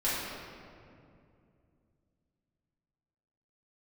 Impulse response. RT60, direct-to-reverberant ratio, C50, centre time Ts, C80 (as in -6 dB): 2.5 s, -10.5 dB, -2.5 dB, 0.134 s, 0.0 dB